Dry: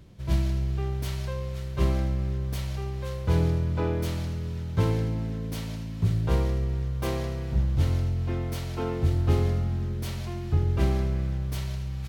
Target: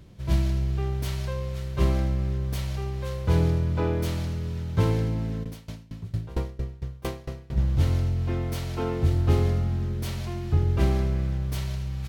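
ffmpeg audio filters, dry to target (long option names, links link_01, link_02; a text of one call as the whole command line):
ffmpeg -i in.wav -filter_complex "[0:a]asplit=3[link_01][link_02][link_03];[link_01]afade=type=out:start_time=5.43:duration=0.02[link_04];[link_02]aeval=exprs='val(0)*pow(10,-24*if(lt(mod(4.4*n/s,1),2*abs(4.4)/1000),1-mod(4.4*n/s,1)/(2*abs(4.4)/1000),(mod(4.4*n/s,1)-2*abs(4.4)/1000)/(1-2*abs(4.4)/1000))/20)':channel_layout=same,afade=type=in:start_time=5.43:duration=0.02,afade=type=out:start_time=7.56:duration=0.02[link_05];[link_03]afade=type=in:start_time=7.56:duration=0.02[link_06];[link_04][link_05][link_06]amix=inputs=3:normalize=0,volume=1.5dB" out.wav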